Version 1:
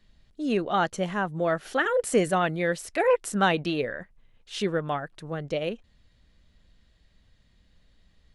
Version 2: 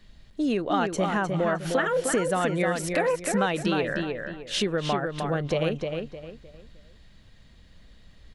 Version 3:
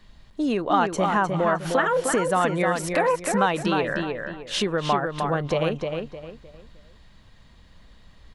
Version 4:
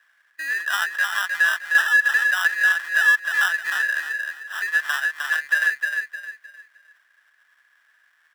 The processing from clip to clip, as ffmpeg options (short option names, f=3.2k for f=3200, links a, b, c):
-filter_complex "[0:a]acompressor=threshold=-31dB:ratio=6,asplit=2[a][b];[b]adelay=307,lowpass=f=3.8k:p=1,volume=-4.5dB,asplit=2[c][d];[d]adelay=307,lowpass=f=3.8k:p=1,volume=0.32,asplit=2[e][f];[f]adelay=307,lowpass=f=3.8k:p=1,volume=0.32,asplit=2[g][h];[h]adelay=307,lowpass=f=3.8k:p=1,volume=0.32[i];[c][e][g][i]amix=inputs=4:normalize=0[j];[a][j]amix=inputs=2:normalize=0,volume=8dB"
-af "equalizer=f=1k:t=o:w=0.73:g=8,volume=1dB"
-af "acrusher=samples=20:mix=1:aa=0.000001,highpass=f=1.7k:t=q:w=16,volume=-5.5dB"